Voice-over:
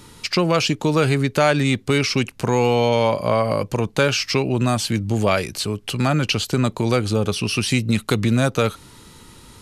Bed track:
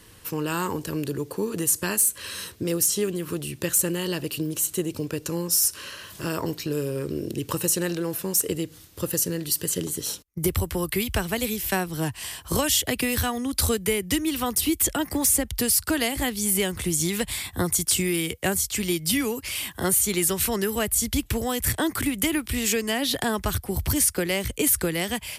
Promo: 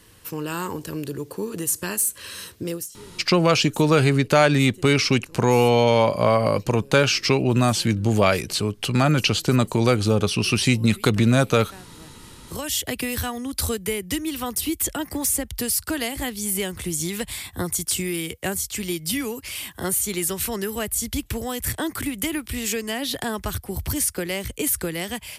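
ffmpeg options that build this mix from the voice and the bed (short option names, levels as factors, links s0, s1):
-filter_complex "[0:a]adelay=2950,volume=1.06[s0];[1:a]volume=6.68,afade=t=out:st=2.68:d=0.21:silence=0.11885,afade=t=in:st=12.41:d=0.4:silence=0.125893[s1];[s0][s1]amix=inputs=2:normalize=0"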